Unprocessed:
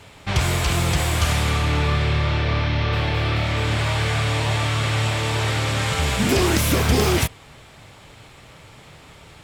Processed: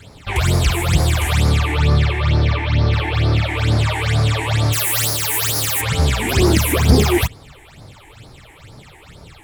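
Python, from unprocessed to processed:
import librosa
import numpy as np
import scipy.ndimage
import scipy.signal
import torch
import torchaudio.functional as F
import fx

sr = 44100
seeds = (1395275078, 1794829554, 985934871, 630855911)

y = fx.envelope_flatten(x, sr, power=0.1, at=(4.72, 5.8), fade=0.02)
y = fx.phaser_stages(y, sr, stages=8, low_hz=160.0, high_hz=2800.0, hz=2.2, feedback_pct=45)
y = F.gain(torch.from_numpy(y), 4.5).numpy()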